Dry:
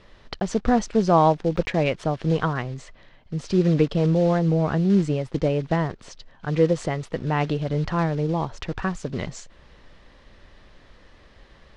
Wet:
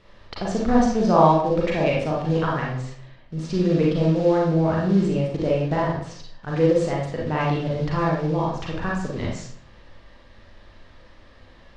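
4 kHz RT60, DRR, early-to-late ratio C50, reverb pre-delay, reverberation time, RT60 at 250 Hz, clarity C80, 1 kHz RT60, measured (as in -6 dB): 0.45 s, -4.5 dB, 1.0 dB, 33 ms, 0.60 s, 0.70 s, 5.5 dB, 0.55 s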